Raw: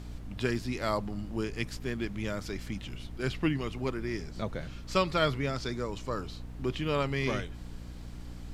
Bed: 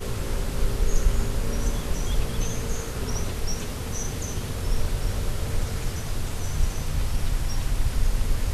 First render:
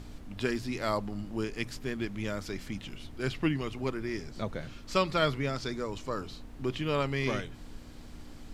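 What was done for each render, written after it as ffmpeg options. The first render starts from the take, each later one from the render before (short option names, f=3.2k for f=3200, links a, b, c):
-af "bandreject=f=60:t=h:w=4,bandreject=f=120:t=h:w=4,bandreject=f=180:t=h:w=4"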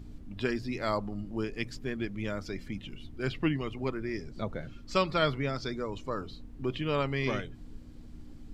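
-af "afftdn=nr=11:nf=-47"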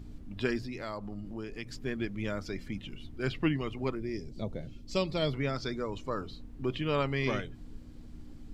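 -filter_complex "[0:a]asettb=1/sr,asplit=3[a][b][c];[a]atrim=end=0.654[d];[b]atrim=start=0.65:end=1.83,asetpts=PTS-STARTPTS,afade=t=in:d=0.004:c=qsin,afade=t=out:st=1.176:d=0.004:c=qsin,acompressor=threshold=-37dB:ratio=2.5:attack=3.2:release=140:knee=1:detection=peak[e];[c]atrim=start=1.826[f];[d][e]acrossfade=d=0.004:c1=hsin:c2=qsin[g];[g][f]acrossfade=d=0.004:c1=qsin:c2=hsin,asettb=1/sr,asplit=3[h][i][j];[h]atrim=end=3.954[k];[i]atrim=start=3.95:end=5.34,asetpts=PTS-STARTPTS,afade=t=in:d=0.004:c=qsin,afade=t=out:st=1.386:d=0.004:c=qsin,equalizer=f=1.4k:t=o:w=1.1:g=-14.5[l];[j]atrim=start=5.336[m];[k][l]acrossfade=d=0.004:c1=hsin:c2=qsin[n];[n][m]acrossfade=d=0.004:c1=qsin:c2=hsin"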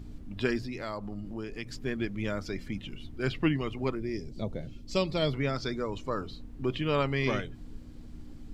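-af "volume=2dB"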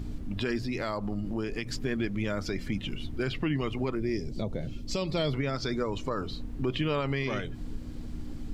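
-filter_complex "[0:a]asplit=2[a][b];[b]acompressor=threshold=-37dB:ratio=6,volume=3dB[c];[a][c]amix=inputs=2:normalize=0,alimiter=limit=-20dB:level=0:latency=1:release=61"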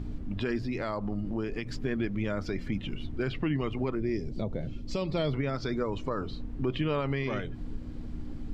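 -af "lowpass=f=2.4k:p=1"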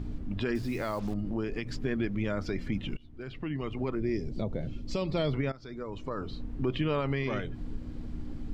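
-filter_complex "[0:a]asettb=1/sr,asplit=3[a][b][c];[a]atrim=end=0.554[d];[b]atrim=start=0.55:end=1.14,asetpts=PTS-STARTPTS,afade=t=in:d=0.004:c=qsin,afade=t=out:st=0.586:d=0.004:c=qsin,acrusher=bits=7:mix=0:aa=0.5[e];[c]atrim=start=1.136[f];[d][e]acrossfade=d=0.004:c1=hsin:c2=qsin[g];[g][f]acrossfade=d=0.004:c1=qsin:c2=hsin,asplit=3[h][i][j];[h]atrim=end=2.97,asetpts=PTS-STARTPTS,afade=t=out:st=2.966:d=0.004:c=hsin:silence=0.0749894[k];[i]atrim=start=2.97:end=5.52,asetpts=PTS-STARTPTS,afade=t=in:d=1.08:silence=0.0749894,afade=t=out:st=2.546:d=0.004:c=hsin:silence=0.112202[l];[j]atrim=start=5.52,asetpts=PTS-STARTPTS,afade=t=in:d=0.95:silence=0.112202[m];[k][l][m]concat=n=3:v=0:a=1"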